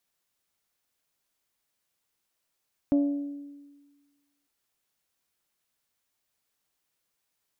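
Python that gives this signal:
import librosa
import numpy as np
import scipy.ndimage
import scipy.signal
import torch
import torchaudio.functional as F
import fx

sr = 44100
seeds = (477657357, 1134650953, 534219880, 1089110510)

y = fx.strike_glass(sr, length_s=1.55, level_db=-18.0, body='bell', hz=285.0, decay_s=1.43, tilt_db=11.0, modes=5)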